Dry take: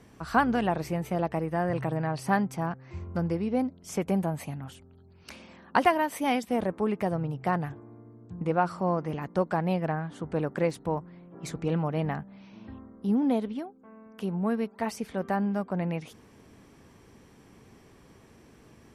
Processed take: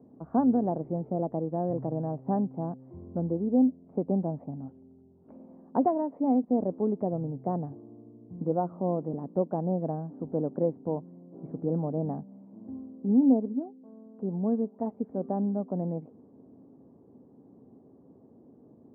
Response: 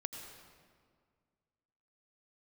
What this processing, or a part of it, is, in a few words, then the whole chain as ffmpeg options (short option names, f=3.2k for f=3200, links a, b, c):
under water: -af "highpass=150,lowpass=f=710:w=0.5412,lowpass=f=710:w=1.3066,equalizer=f=260:t=o:w=0.23:g=8"